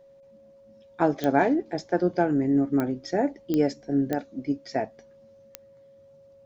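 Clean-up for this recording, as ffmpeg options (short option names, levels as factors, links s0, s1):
-af "adeclick=t=4,bandreject=f=550:w=30"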